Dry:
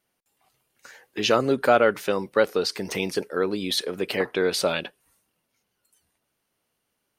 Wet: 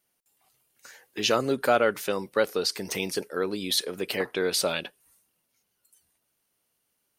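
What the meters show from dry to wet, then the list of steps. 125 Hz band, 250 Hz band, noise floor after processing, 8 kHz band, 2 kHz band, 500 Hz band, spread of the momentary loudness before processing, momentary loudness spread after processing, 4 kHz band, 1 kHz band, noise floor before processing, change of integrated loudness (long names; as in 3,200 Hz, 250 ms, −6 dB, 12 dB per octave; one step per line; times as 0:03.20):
−4.0 dB, −4.0 dB, −76 dBFS, +2.5 dB, −3.0 dB, −4.0 dB, 9 LU, 8 LU, −0.5 dB, −3.5 dB, −78 dBFS, −3.0 dB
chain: high-shelf EQ 5,000 Hz +9.5 dB
level −4 dB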